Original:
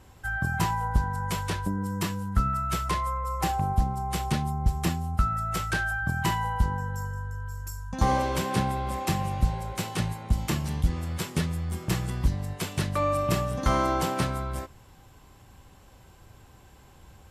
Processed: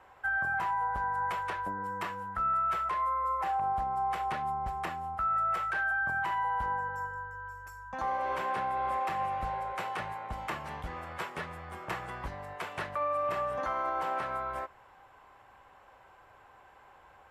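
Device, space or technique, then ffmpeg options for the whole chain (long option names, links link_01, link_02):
DJ mixer with the lows and highs turned down: -filter_complex "[0:a]acrossover=split=540 2200:gain=0.0708 1 0.0794[link_01][link_02][link_03];[link_01][link_02][link_03]amix=inputs=3:normalize=0,alimiter=level_in=5dB:limit=-24dB:level=0:latency=1:release=169,volume=-5dB,volume=5dB"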